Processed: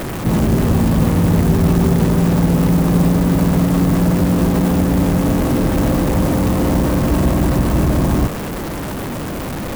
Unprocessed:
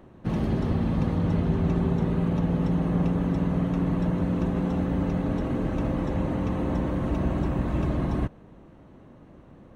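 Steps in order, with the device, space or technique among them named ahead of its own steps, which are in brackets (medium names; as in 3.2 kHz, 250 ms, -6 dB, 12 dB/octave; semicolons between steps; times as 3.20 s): early CD player with a faulty converter (jump at every zero crossing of -27.5 dBFS; sampling jitter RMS 0.049 ms); trim +8.5 dB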